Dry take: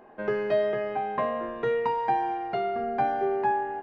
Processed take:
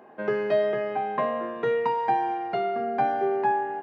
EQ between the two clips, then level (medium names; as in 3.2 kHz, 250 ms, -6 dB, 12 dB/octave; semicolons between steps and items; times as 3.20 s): high-pass 120 Hz 24 dB/octave; +1.5 dB